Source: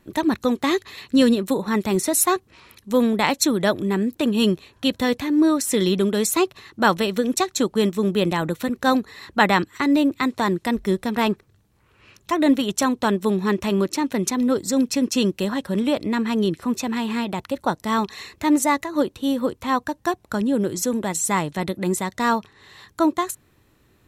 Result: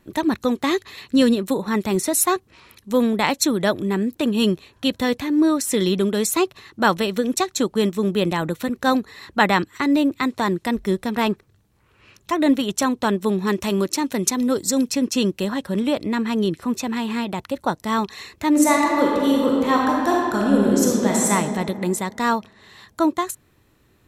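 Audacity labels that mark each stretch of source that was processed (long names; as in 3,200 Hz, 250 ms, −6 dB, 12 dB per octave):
13.470000	14.920000	bass and treble bass −1 dB, treble +6 dB
18.500000	21.310000	thrown reverb, RT60 2.1 s, DRR −3 dB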